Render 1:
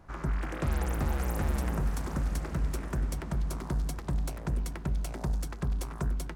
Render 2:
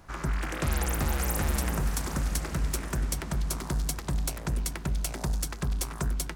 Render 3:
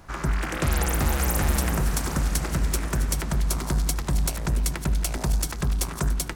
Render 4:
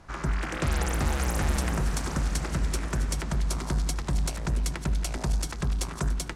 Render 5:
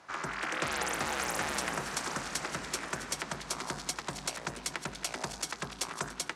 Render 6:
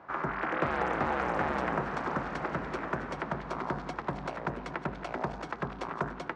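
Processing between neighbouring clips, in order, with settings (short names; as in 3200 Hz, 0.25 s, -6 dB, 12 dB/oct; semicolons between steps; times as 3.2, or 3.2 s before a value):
high shelf 2100 Hz +11 dB; gain +1 dB
regenerating reverse delay 0.144 s, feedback 43%, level -12 dB; gain +4.5 dB
LPF 8500 Hz 12 dB/oct; gain -3 dB
weighting filter A
LPF 1300 Hz 12 dB/oct; gain +6.5 dB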